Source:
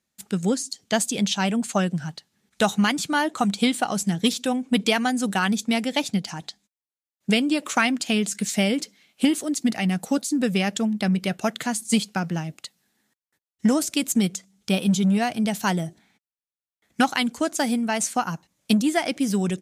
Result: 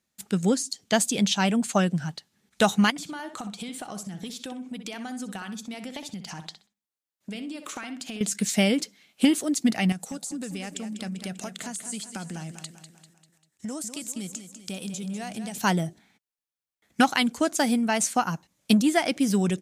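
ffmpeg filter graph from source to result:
ffmpeg -i in.wav -filter_complex "[0:a]asettb=1/sr,asplit=3[link_01][link_02][link_03];[link_01]atrim=end=2.904[link_04];[link_02]atrim=start=2.9:end=8.21,asetpts=PTS-STARTPTS,afade=type=in:duration=0.004:curve=qsin,afade=type=out:start_time=5.306:duration=0.004:curve=qsin,highpass=54,acompressor=threshold=-33dB:ratio=10:attack=3.2:release=140:knee=1:detection=peak,asplit=2[link_05][link_06];[link_06]adelay=63,lowpass=frequency=3800:poles=1,volume=-9dB,asplit=2[link_07][link_08];[link_08]adelay=63,lowpass=frequency=3800:poles=1,volume=0.29,asplit=2[link_09][link_10];[link_10]adelay=63,lowpass=frequency=3800:poles=1,volume=0.29[link_11];[link_05][link_07][link_09][link_11]amix=inputs=4:normalize=0,atrim=end_sample=234171[link_12];[link_03]atrim=start=8.206[link_13];[link_04][link_12]acrossfade=duration=0.004:curve1=hsin:curve2=qsin[link_14];[link_14][link_13]acrossfade=duration=0.004:curve1=qsin:curve2=hsin,asettb=1/sr,asplit=3[link_15][link_16][link_17];[link_15]atrim=end=9.924[link_18];[link_16]atrim=start=9.92:end=15.58,asetpts=PTS-STARTPTS,afade=type=in:duration=0.004:curve=qsin,afade=type=out:start_time=5.656:duration=0.004:curve=qsin,equalizer=frequency=8000:width=1.2:gain=10,acompressor=threshold=-34dB:ratio=4:attack=3.2:release=140:knee=1:detection=peak,aecho=1:1:197|394|591|788|985:0.316|0.158|0.0791|0.0395|0.0198,atrim=end_sample=249606[link_19];[link_17]atrim=start=15.576[link_20];[link_18][link_19]acrossfade=duration=0.004:curve1=hsin:curve2=qsin[link_21];[link_21][link_20]acrossfade=duration=0.004:curve1=qsin:curve2=hsin" out.wav

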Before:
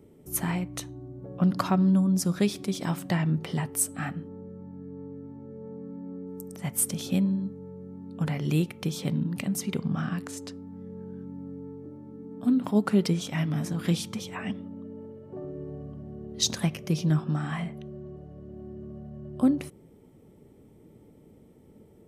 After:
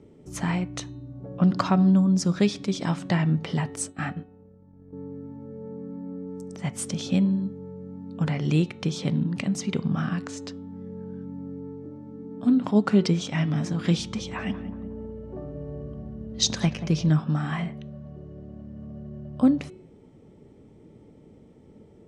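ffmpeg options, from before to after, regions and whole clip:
ffmpeg -i in.wav -filter_complex "[0:a]asettb=1/sr,asplit=3[link_01][link_02][link_03];[link_01]atrim=end=3.764[link_04];[link_02]atrim=start=3.76:end=4.93,asetpts=PTS-STARTPTS,afade=type=in:duration=0.004:curve=qsin,afade=type=out:start_time=1.166:duration=0.004:curve=qsin,agate=range=-33dB:threshold=-34dB:ratio=3:release=100:detection=peak,asubboost=boost=9.5:cutoff=86[link_05];[link_03]atrim=start=4.926[link_06];[link_04][link_05]acrossfade=duration=0.004:curve1=hsin:curve2=qsin[link_07];[link_07][link_06]acrossfade=duration=0.004:curve1=qsin:curve2=hsin,asettb=1/sr,asplit=3[link_08][link_09][link_10];[link_08]atrim=end=13.984[link_11];[link_09]atrim=start=13.98:end=17.09,asetpts=PTS-STARTPTS,afade=type=in:duration=0.004:curve=qsin,afade=type=out:start_time=3.106:duration=0.004:curve=qsin,aeval=exprs='val(0)+0.00398*(sin(2*PI*60*n/s)+sin(2*PI*2*60*n/s)/2+sin(2*PI*3*60*n/s)/3+sin(2*PI*4*60*n/s)/4+sin(2*PI*5*60*n/s)/5)':channel_layout=same,asplit=2[link_12][link_13];[link_13]adelay=182,lowpass=frequency=1200:poles=1,volume=-11dB,asplit=2[link_14][link_15];[link_15]adelay=182,lowpass=frequency=1200:poles=1,volume=0.49,asplit=2[link_16][link_17];[link_17]adelay=182,lowpass=frequency=1200:poles=1,volume=0.49,asplit=2[link_18][link_19];[link_19]adelay=182,lowpass=frequency=1200:poles=1,volume=0.49,asplit=2[link_20][link_21];[link_21]adelay=182,lowpass=frequency=1200:poles=1,volume=0.49[link_22];[link_12][link_14][link_16][link_18][link_20][link_22]amix=inputs=6:normalize=0,atrim=end_sample=137151[link_23];[link_10]atrim=start=17.086[link_24];[link_11][link_23]acrossfade=duration=0.004:curve1=hsin:curve2=qsin[link_25];[link_25][link_24]acrossfade=duration=0.004:curve1=qsin:curve2=hsin,lowpass=frequency=7100:width=0.5412,lowpass=frequency=7100:width=1.3066,bandreject=frequency=369.9:width_type=h:width=4,bandreject=frequency=739.8:width_type=h:width=4,bandreject=frequency=1109.7:width_type=h:width=4,bandreject=frequency=1479.6:width_type=h:width=4,bandreject=frequency=1849.5:width_type=h:width=4,bandreject=frequency=2219.4:width_type=h:width=4,bandreject=frequency=2589.3:width_type=h:width=4,bandreject=frequency=2959.2:width_type=h:width=4,bandreject=frequency=3329.1:width_type=h:width=4,bandreject=frequency=3699:width_type=h:width=4,bandreject=frequency=4068.9:width_type=h:width=4,volume=3dB" out.wav

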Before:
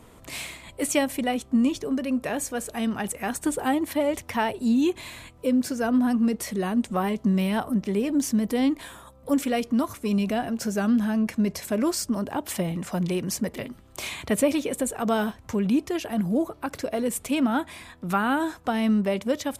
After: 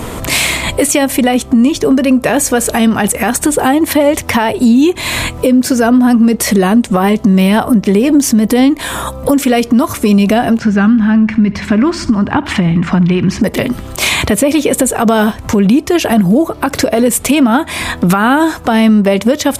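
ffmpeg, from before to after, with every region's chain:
ffmpeg -i in.wav -filter_complex "[0:a]asettb=1/sr,asplit=3[link_01][link_02][link_03];[link_01]atrim=end=10.594[link_04];[link_02]atrim=start=10.59:end=13.42,asetpts=PTS-STARTPTS,afade=type=in:duration=0.004:curve=qsin,afade=type=out:start_time=2.826:duration=0.004:curve=qsin,lowpass=2200,equalizer=frequency=540:width_type=o:width=1.3:gain=-14.5,aecho=1:1:69|138|207|276:0.112|0.055|0.0269|0.0132,atrim=end_sample=124803[link_05];[link_03]atrim=start=13.416[link_06];[link_04][link_05]acrossfade=duration=0.004:curve1=hsin:curve2=qsin[link_07];[link_07][link_06]acrossfade=duration=0.004:curve1=qsin:curve2=hsin,acompressor=threshold=-37dB:ratio=4,alimiter=level_in=29dB:limit=-1dB:release=50:level=0:latency=1,volume=-1dB" out.wav

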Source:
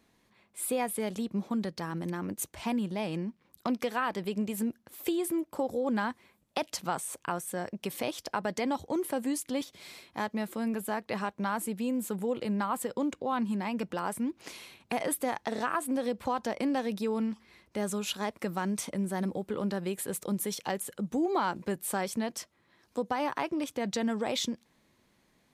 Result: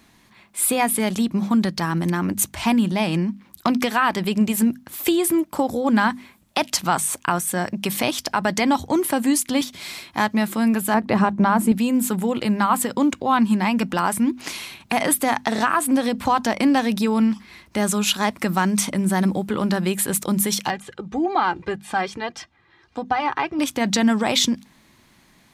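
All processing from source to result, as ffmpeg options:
ffmpeg -i in.wav -filter_complex "[0:a]asettb=1/sr,asplit=3[link_01][link_02][link_03];[link_01]atrim=end=10.944[link_04];[link_02]atrim=start=10.94:end=11.72,asetpts=PTS-STARTPTS,afade=type=in:duration=0.004:curve=qsin,afade=type=out:start_time=0.776:duration=0.004:curve=qsin,tiltshelf=frequency=1200:gain=7.5,bandreject=frequency=60:width_type=h:width=6,bandreject=frequency=120:width_type=h:width=6,bandreject=frequency=180:width_type=h:width=6,bandreject=frequency=240:width_type=h:width=6,bandreject=frequency=300:width_type=h:width=6,bandreject=frequency=360:width_type=h:width=6[link_05];[link_03]atrim=start=11.716[link_06];[link_04][link_05]acrossfade=duration=0.004:curve1=hsin:curve2=qsin[link_07];[link_07][link_06]acrossfade=duration=0.004:curve1=qsin:curve2=hsin,asettb=1/sr,asplit=3[link_08][link_09][link_10];[link_08]atrim=end=20.704[link_11];[link_09]atrim=start=20.7:end=23.59,asetpts=PTS-STARTPTS,afade=type=in:duration=0.004:curve=qsin,afade=type=out:start_time=2.886:duration=0.004:curve=qsin,flanger=delay=1.1:depth=1.1:regen=-43:speed=1.7:shape=sinusoidal,lowpass=3600,aecho=1:1:2.5:0.49,atrim=end_sample=127449[link_12];[link_10]atrim=start=23.586[link_13];[link_11][link_12]acrossfade=duration=0.004:curve1=hsin:curve2=qsin[link_14];[link_14][link_13]acrossfade=duration=0.004:curve1=qsin:curve2=hsin,equalizer=frequency=480:width_type=o:width=0.81:gain=-9,bandreject=frequency=50:width_type=h:width=6,bandreject=frequency=100:width_type=h:width=6,bandreject=frequency=150:width_type=h:width=6,bandreject=frequency=200:width_type=h:width=6,bandreject=frequency=250:width_type=h:width=6,alimiter=level_in=21dB:limit=-1dB:release=50:level=0:latency=1,volume=-6.5dB" out.wav

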